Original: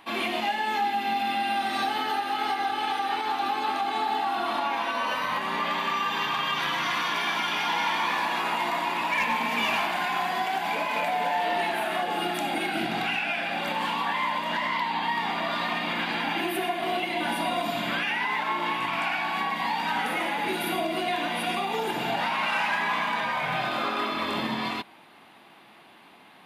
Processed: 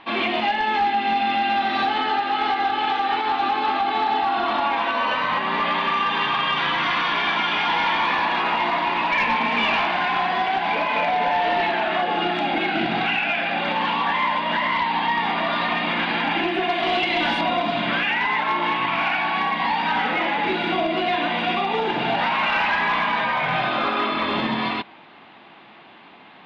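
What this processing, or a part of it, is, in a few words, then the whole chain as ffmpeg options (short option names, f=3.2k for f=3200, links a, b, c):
synthesiser wavefolder: -filter_complex "[0:a]asettb=1/sr,asplit=3[a][b][c];[a]atrim=end=16.694[d];[b]atrim=start=16.69:end=17.41,asetpts=PTS-STARTPTS,afade=t=in:d=0.004:c=qsin,afade=t=out:st=0.716:d=0.004:c=qsin,aemphasis=mode=production:type=75kf[e];[c]atrim=start=17.406[f];[d][e]acrossfade=d=0.004:c1=hsin:c2=qsin[g];[g][f]acrossfade=d=0.004:c1=qsin:c2=hsin,aeval=exprs='0.0944*(abs(mod(val(0)/0.0944+3,4)-2)-1)':c=same,lowpass=f=4k:w=0.5412,lowpass=f=4k:w=1.3066,volume=6dB"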